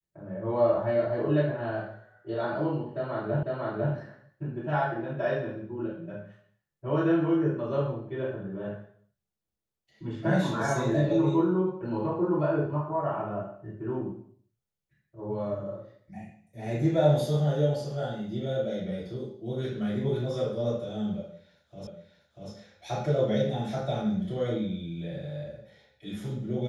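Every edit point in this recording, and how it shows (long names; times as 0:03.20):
0:03.43: the same again, the last 0.5 s
0:21.87: the same again, the last 0.64 s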